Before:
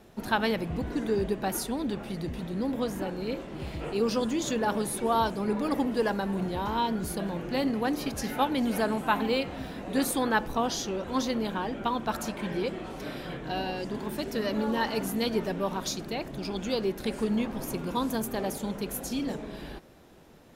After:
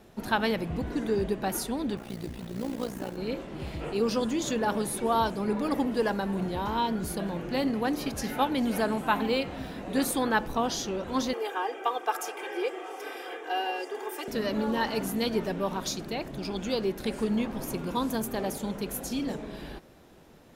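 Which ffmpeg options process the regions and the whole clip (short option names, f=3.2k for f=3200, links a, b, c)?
-filter_complex "[0:a]asettb=1/sr,asplit=3[a][b][c];[a]atrim=end=1.974[d];[b]atrim=start=1.97:end=3.17,asetpts=PTS-STARTPTS,afade=t=in:d=0.004:c=qsin,afade=t=out:st=1.196:d=0.004:c=qsin,acrusher=bits=4:mode=log:mix=0:aa=0.000001,tremolo=f=59:d=0.788[e];[c]atrim=start=3.166[f];[d][e]acrossfade=d=0.004:c1=hsin:c2=qsin[g];[g][f]acrossfade=d=0.004:c1=qsin:c2=hsin,asettb=1/sr,asplit=3[h][i][j];[h]atrim=end=11.334[k];[i]atrim=start=11.33:end=14.28,asetpts=PTS-STARTPTS,afade=t=in:d=0.004:c=qsin,afade=t=out:st=2.946:d=0.004:c=qsin,highpass=f=420:w=0.5412,highpass=f=420:w=1.3066,equalizer=f=4.1k:t=o:w=0.25:g=-15,aecho=1:1:2.5:0.93,atrim=end_sample=130095[l];[j]atrim=start=14.276[m];[k][l]acrossfade=d=0.004:c1=hsin:c2=qsin[n];[n][m]acrossfade=d=0.004:c1=qsin:c2=hsin"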